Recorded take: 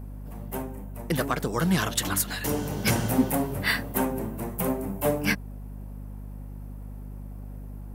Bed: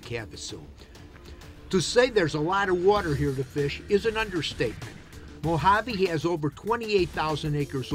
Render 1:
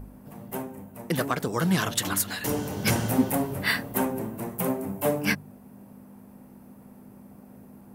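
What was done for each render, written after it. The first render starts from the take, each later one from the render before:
hum removal 50 Hz, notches 3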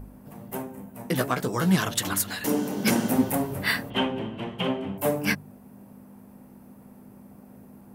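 0:00.73–0:01.76: double-tracking delay 16 ms −6 dB
0:02.46–0:03.15: high-pass with resonance 230 Hz, resonance Q 2.2
0:03.90–0:04.98: low-pass with resonance 3,100 Hz, resonance Q 12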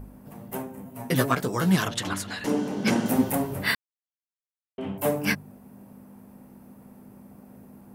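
0:00.85–0:01.35: comb filter 7.4 ms, depth 84%
0:01.88–0:03.06: high-frequency loss of the air 65 metres
0:03.75–0:04.78: silence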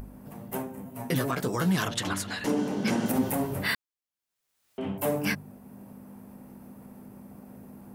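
upward compression, threshold −42 dBFS
brickwall limiter −17.5 dBFS, peak gain reduction 9 dB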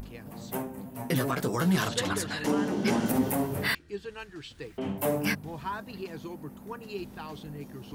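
mix in bed −14.5 dB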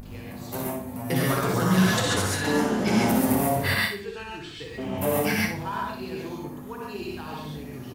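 repeating echo 60 ms, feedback 35%, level −7 dB
reverb whose tail is shaped and stops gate 160 ms rising, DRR −3 dB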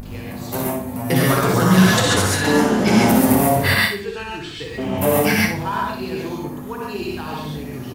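level +7.5 dB

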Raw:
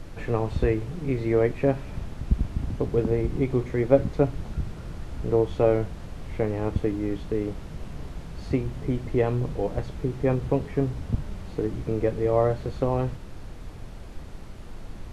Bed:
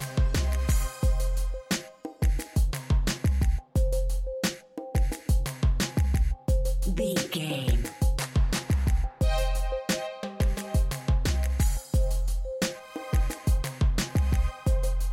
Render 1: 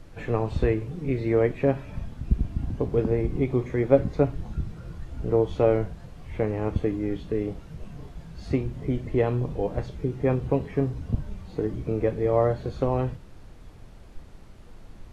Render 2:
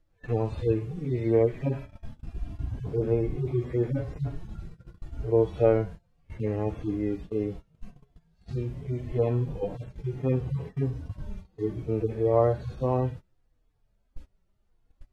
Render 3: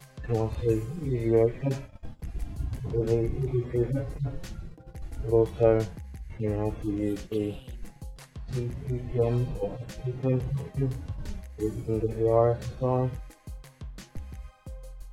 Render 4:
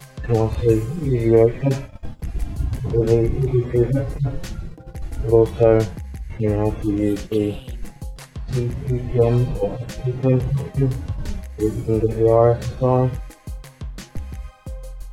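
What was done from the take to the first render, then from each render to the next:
noise reduction from a noise print 7 dB
harmonic-percussive split with one part muted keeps harmonic; noise gate −37 dBFS, range −22 dB
mix in bed −17 dB
level +9 dB; brickwall limiter −3 dBFS, peak gain reduction 3 dB

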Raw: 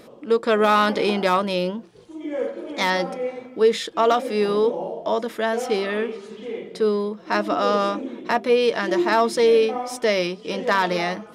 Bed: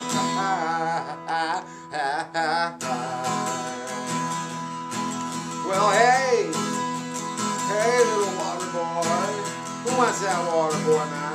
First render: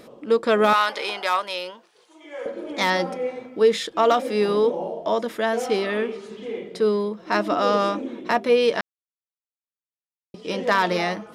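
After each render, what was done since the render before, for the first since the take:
0:00.73–0:02.46: high-pass filter 810 Hz
0:08.81–0:10.34: silence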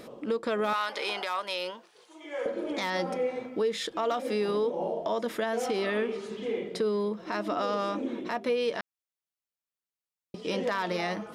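downward compressor 5 to 1, threshold −25 dBFS, peak gain reduction 12 dB
brickwall limiter −20 dBFS, peak gain reduction 8.5 dB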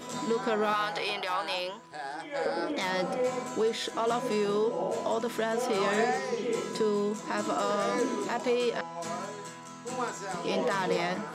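mix in bed −12.5 dB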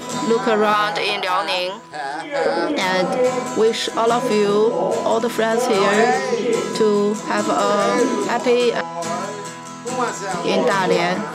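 level +11.5 dB

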